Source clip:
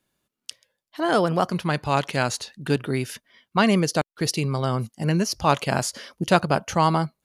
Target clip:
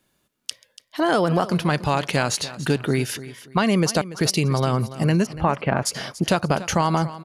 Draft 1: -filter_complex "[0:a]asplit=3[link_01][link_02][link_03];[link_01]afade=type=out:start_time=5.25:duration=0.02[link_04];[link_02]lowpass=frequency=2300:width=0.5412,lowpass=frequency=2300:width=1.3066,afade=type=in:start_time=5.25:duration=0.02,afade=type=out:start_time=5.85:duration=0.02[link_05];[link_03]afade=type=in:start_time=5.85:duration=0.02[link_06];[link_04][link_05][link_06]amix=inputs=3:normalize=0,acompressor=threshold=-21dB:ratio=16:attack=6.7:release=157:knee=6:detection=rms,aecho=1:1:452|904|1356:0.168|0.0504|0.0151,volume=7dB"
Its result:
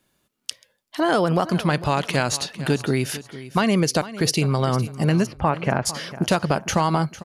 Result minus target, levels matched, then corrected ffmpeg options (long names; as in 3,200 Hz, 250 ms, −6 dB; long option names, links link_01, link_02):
echo 165 ms late
-filter_complex "[0:a]asplit=3[link_01][link_02][link_03];[link_01]afade=type=out:start_time=5.25:duration=0.02[link_04];[link_02]lowpass=frequency=2300:width=0.5412,lowpass=frequency=2300:width=1.3066,afade=type=in:start_time=5.25:duration=0.02,afade=type=out:start_time=5.85:duration=0.02[link_05];[link_03]afade=type=in:start_time=5.85:duration=0.02[link_06];[link_04][link_05][link_06]amix=inputs=3:normalize=0,acompressor=threshold=-21dB:ratio=16:attack=6.7:release=157:knee=6:detection=rms,aecho=1:1:287|574|861:0.168|0.0504|0.0151,volume=7dB"